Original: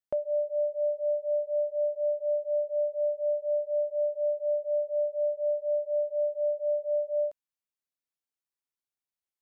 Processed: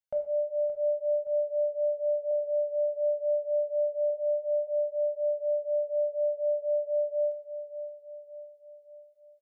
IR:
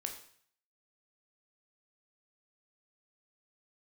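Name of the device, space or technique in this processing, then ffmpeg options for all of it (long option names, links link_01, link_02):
microphone above a desk: -filter_complex "[0:a]asettb=1/sr,asplit=3[link_01][link_02][link_03];[link_01]atrim=end=2.314[link_04];[link_02]atrim=start=2.31:end=4.1,asetpts=PTS-STARTPTS,afade=type=in:duration=0.004:curve=qsin,afade=type=out:start_time=1.786:duration=0.004:curve=qsin,highpass=290[link_05];[link_03]atrim=start=4.096[link_06];[link_04][link_05]acrossfade=duration=0.004:curve1=hsin:curve2=qsin[link_07];[link_07][link_06]acrossfade=duration=0.004:curve1=qsin:curve2=hsin,aecho=1:1:1.4:0.86,aecho=1:1:572|1144|1716|2288|2860:0.282|0.141|0.0705|0.0352|0.0176[link_08];[1:a]atrim=start_sample=2205[link_09];[link_08][link_09]afir=irnorm=-1:irlink=0,volume=-5.5dB"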